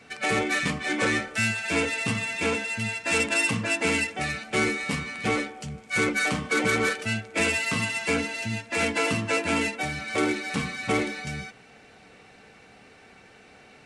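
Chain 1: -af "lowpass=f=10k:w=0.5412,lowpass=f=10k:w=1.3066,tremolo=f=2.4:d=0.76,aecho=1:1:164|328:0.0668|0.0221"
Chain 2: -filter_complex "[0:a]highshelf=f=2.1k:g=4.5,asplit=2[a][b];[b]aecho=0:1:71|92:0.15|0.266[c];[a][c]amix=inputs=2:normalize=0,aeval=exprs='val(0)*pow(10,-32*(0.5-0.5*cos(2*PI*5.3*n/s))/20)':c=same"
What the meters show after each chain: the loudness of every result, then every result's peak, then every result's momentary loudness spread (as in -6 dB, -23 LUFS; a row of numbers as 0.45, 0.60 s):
-29.5, -30.0 LUFS; -12.5, -11.5 dBFS; 8, 9 LU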